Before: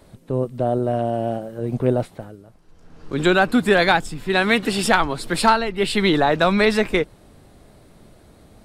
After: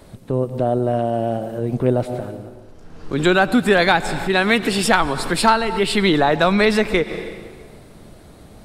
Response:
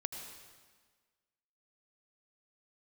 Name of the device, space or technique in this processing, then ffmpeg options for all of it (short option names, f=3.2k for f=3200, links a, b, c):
ducked reverb: -filter_complex "[0:a]asplit=3[a][b][c];[1:a]atrim=start_sample=2205[d];[b][d]afir=irnorm=-1:irlink=0[e];[c]apad=whole_len=381198[f];[e][f]sidechaincompress=threshold=-27dB:ratio=8:attack=5.1:release=130,volume=0dB[g];[a][g]amix=inputs=2:normalize=0"